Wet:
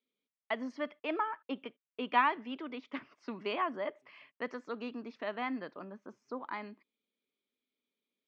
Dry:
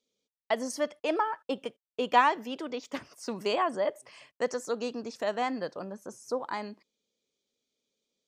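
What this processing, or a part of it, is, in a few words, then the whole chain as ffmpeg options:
kitchen radio: -af "highpass=180,equalizer=frequency=260:width_type=q:width=4:gain=4,equalizer=frequency=510:width_type=q:width=4:gain=-7,equalizer=frequency=760:width_type=q:width=4:gain=-4,equalizer=frequency=1200:width_type=q:width=4:gain=3,equalizer=frequency=2200:width_type=q:width=4:gain=5,lowpass=frequency=3500:width=0.5412,lowpass=frequency=3500:width=1.3066,volume=-5dB"

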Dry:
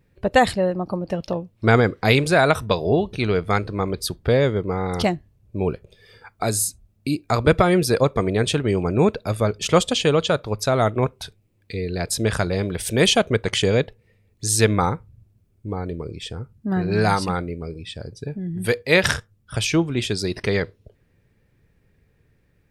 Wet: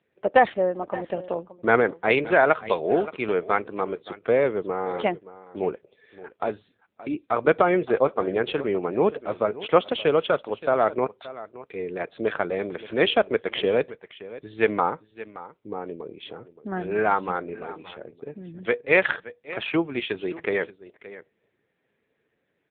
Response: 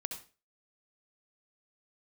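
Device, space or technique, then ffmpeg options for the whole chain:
satellite phone: -filter_complex "[0:a]asettb=1/sr,asplit=3[link_01][link_02][link_03];[link_01]atrim=end=19.734[link_04];[link_02]atrim=start=19.73:end=20.13,asetpts=PTS-STARTPTS,afade=type=in:duration=0.004:curve=qsin,afade=type=out:start_time=0.396:duration=0.004:curve=qsin,equalizer=frequency=2100:width=1.3:gain=4.5[link_05];[link_03]atrim=start=20.126[link_06];[link_04][link_05]acrossfade=duration=0.004:curve1=hsin:curve2=qsin[link_07];[link_07][link_06]acrossfade=duration=0.004:curve1=qsin:curve2=hsin,highpass=340,lowpass=3100,aecho=1:1:573:0.15" -ar 8000 -c:a libopencore_amrnb -b:a 6700

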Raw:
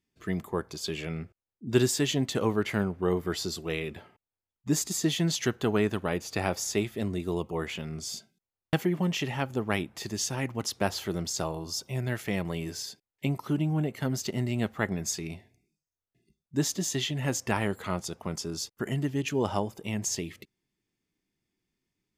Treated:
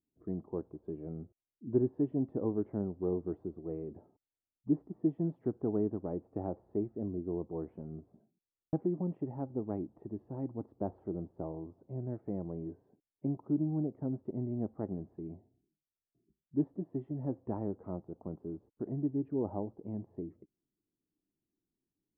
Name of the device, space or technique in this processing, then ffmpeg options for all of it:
under water: -af "lowpass=frequency=790:width=0.5412,lowpass=frequency=790:width=1.3066,equalizer=frequency=300:width_type=o:width=0.57:gain=7.5,volume=-8.5dB"

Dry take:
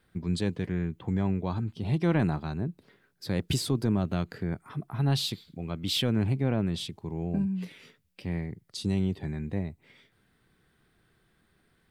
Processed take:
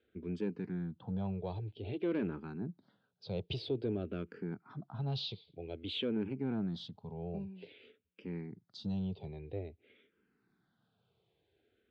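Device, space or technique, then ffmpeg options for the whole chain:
barber-pole phaser into a guitar amplifier: -filter_complex "[0:a]asplit=2[link_01][link_02];[link_02]afreqshift=-0.51[link_03];[link_01][link_03]amix=inputs=2:normalize=1,asoftclip=type=tanh:threshold=-21.5dB,highpass=100,equalizer=frequency=150:width_type=q:width=4:gain=-5,equalizer=frequency=440:width_type=q:width=4:gain=6,equalizer=frequency=1100:width_type=q:width=4:gain=-7,equalizer=frequency=1900:width_type=q:width=4:gain=-10,lowpass=frequency=4000:width=0.5412,lowpass=frequency=4000:width=1.3066,volume=-4dB"

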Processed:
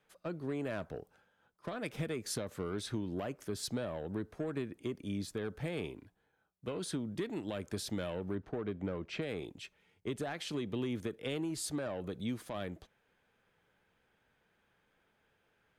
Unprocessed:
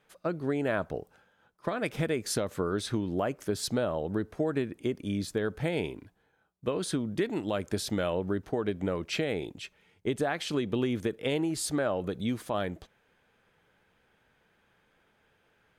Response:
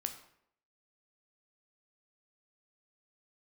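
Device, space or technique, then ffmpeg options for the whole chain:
one-band saturation: -filter_complex "[0:a]asettb=1/sr,asplit=3[link_01][link_02][link_03];[link_01]atrim=end=8.354[link_04];[link_02]atrim=start=8.35:end=9.22,asetpts=PTS-STARTPTS,afade=type=in:duration=0.004:curve=qsin,afade=type=out:start_time=0.866:duration=0.004:curve=qsin,aemphasis=mode=reproduction:type=75fm[link_05];[link_03]atrim=start=9.216[link_06];[link_04][link_05]acrossfade=duration=0.004:curve1=hsin:curve2=qsin[link_07];[link_07][link_06]acrossfade=duration=0.004:curve1=qsin:curve2=hsin,acrossover=split=290|2200[link_08][link_09][link_10];[link_09]asoftclip=type=tanh:threshold=-30dB[link_11];[link_08][link_11][link_10]amix=inputs=3:normalize=0,volume=-6dB"

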